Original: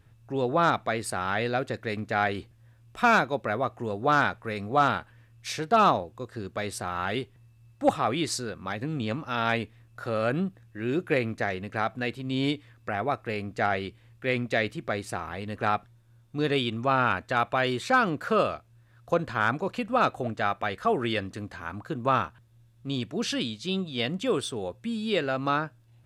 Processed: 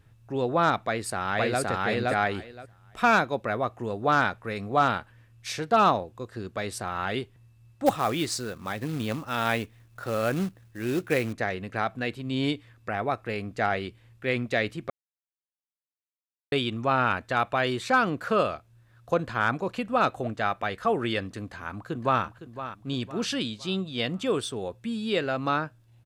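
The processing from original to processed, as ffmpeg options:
-filter_complex "[0:a]asplit=2[s0][s1];[s1]afade=t=in:st=0.79:d=0.01,afade=t=out:st=1.61:d=0.01,aecho=0:1:520|1040|1560:1|0.15|0.0225[s2];[s0][s2]amix=inputs=2:normalize=0,asettb=1/sr,asplit=3[s3][s4][s5];[s3]atrim=end=7.864[s6];[s4]atrim=start=7.86:end=11.33,asetpts=PTS-STARTPTS,afade=t=in:d=0.004:c=qsin,afade=t=out:st=3.466:d=0.004:c=qsin,acrusher=bits=4:mode=log:mix=0:aa=0.000001[s7];[s5]atrim=start=11.326[s8];[s6][s7]acrossfade=d=0.004:c1=hsin:c2=qsin[s9];[s9][s8]acrossfade=d=0.004:c1=qsin:c2=hsin,asplit=2[s10][s11];[s11]afade=t=in:st=21.43:d=0.01,afade=t=out:st=22.23:d=0.01,aecho=0:1:510|1020|1530|2040:0.251189|0.100475|0.0401902|0.0160761[s12];[s10][s12]amix=inputs=2:normalize=0,asplit=3[s13][s14][s15];[s13]atrim=end=14.9,asetpts=PTS-STARTPTS,afade=t=out:st=14.896:d=0.004:c=hsin[s16];[s14]atrim=start=14.9:end=16.52,asetpts=PTS-STARTPTS,volume=0[s17];[s15]atrim=start=16.52,asetpts=PTS-STARTPTS,afade=t=in:d=0.004:c=hsin[s18];[s16][s17][s18]concat=n=3:v=0:a=1"

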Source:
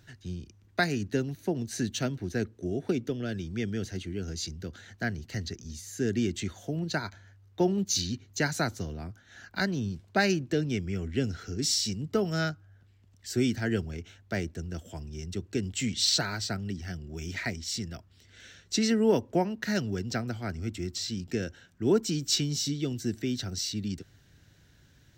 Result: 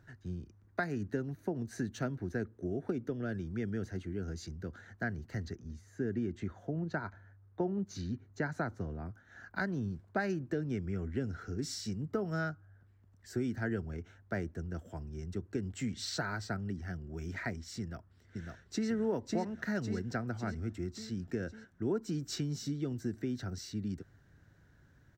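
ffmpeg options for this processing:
-filter_complex "[0:a]asettb=1/sr,asplit=3[s0][s1][s2];[s0]atrim=end=5.554[s3];[s1]atrim=start=5.55:end=9.06,asetpts=PTS-STARTPTS,afade=t=in:d=0.004:c=qsin,afade=t=out:st=3.506:d=0.004:c=qsin,lowpass=f=2300:p=1[s4];[s2]atrim=start=9.056[s5];[s3][s4]acrossfade=d=0.004:c1=hsin:c2=qsin[s6];[s6][s5]acrossfade=d=0.004:c1=qsin:c2=hsin,asplit=2[s7][s8];[s8]afade=t=in:st=17.8:d=0.01,afade=t=out:st=18.89:d=0.01,aecho=0:1:550|1100|1650|2200|2750|3300|3850|4400:0.794328|0.436881|0.240284|0.132156|0.072686|0.0399773|0.0219875|0.0120931[s9];[s7][s9]amix=inputs=2:normalize=0,highshelf=f=2100:t=q:w=1.5:g=-10,acompressor=threshold=0.0398:ratio=3,volume=0.708"

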